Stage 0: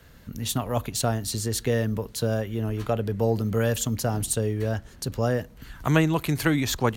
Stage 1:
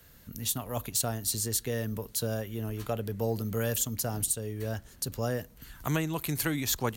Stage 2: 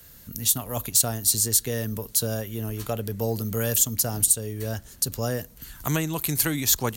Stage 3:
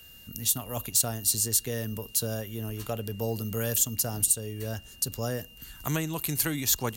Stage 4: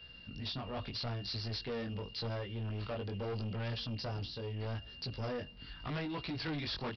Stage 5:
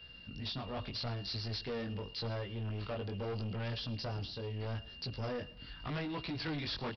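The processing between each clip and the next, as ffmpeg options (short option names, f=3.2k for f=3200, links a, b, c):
-af "aemphasis=mode=production:type=50kf,alimiter=limit=-9dB:level=0:latency=1:release=376,volume=-7dB"
-af "bass=f=250:g=1,treble=f=4k:g=7,volume=3dB"
-af "aeval=exprs='val(0)+0.00447*sin(2*PI*2800*n/s)':c=same,volume=-4dB"
-af "flanger=delay=16:depth=5.6:speed=0.81,aresample=11025,asoftclip=type=tanh:threshold=-36.5dB,aresample=44100,volume=2dB"
-af "aecho=1:1:109|218|327:0.1|0.041|0.0168"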